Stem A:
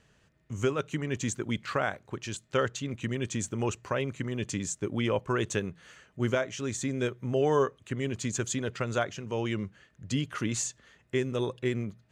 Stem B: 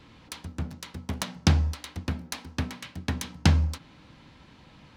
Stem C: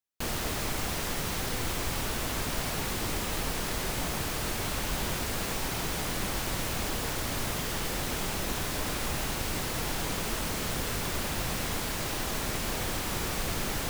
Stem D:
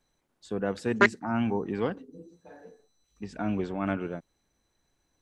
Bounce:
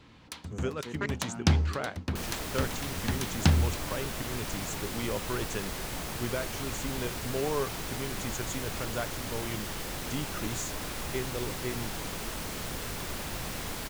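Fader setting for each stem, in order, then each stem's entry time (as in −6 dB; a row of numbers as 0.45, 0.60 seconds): −6.0, −2.5, −4.5, −14.5 decibels; 0.00, 0.00, 1.95, 0.00 seconds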